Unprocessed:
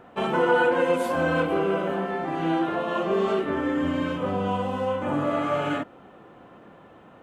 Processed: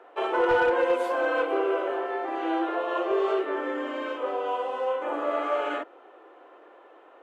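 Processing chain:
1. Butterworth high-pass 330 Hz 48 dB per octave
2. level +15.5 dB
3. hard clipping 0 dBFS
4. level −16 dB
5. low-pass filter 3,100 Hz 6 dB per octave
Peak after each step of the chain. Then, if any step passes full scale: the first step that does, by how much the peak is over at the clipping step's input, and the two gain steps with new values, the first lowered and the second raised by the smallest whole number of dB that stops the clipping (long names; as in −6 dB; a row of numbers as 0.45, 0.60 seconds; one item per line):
−8.5, +7.0, 0.0, −16.0, −16.0 dBFS
step 2, 7.0 dB
step 2 +8.5 dB, step 4 −9 dB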